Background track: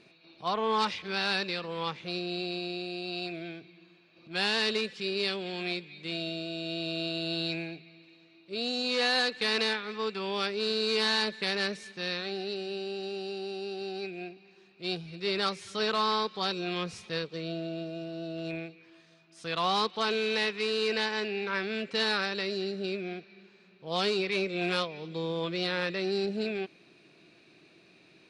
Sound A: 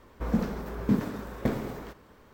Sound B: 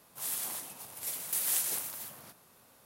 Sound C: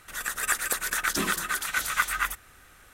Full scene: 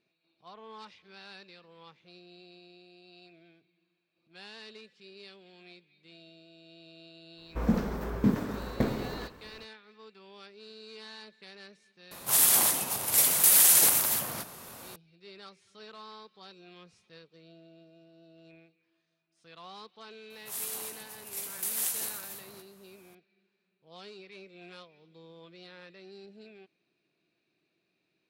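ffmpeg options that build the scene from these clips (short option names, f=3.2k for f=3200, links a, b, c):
-filter_complex "[2:a]asplit=2[a][b];[0:a]volume=-19.5dB[c];[1:a]dynaudnorm=f=120:g=3:m=14dB[d];[a]alimiter=level_in=22.5dB:limit=-1dB:release=50:level=0:latency=1[e];[d]atrim=end=2.33,asetpts=PTS-STARTPTS,volume=-11.5dB,afade=t=in:d=0.05,afade=t=out:st=2.28:d=0.05,adelay=7350[f];[e]atrim=end=2.85,asetpts=PTS-STARTPTS,volume=-8dB,afade=t=in:d=0.004:c=hsin,afade=t=out:st=2.846:d=0.004:c=hsin,adelay=12110[g];[b]atrim=end=2.85,asetpts=PTS-STARTPTS,volume=-1dB,afade=t=in:d=0.004:c=hsin,afade=t=out:st=2.846:d=0.004:c=hsin,adelay=20300[h];[c][f][g][h]amix=inputs=4:normalize=0"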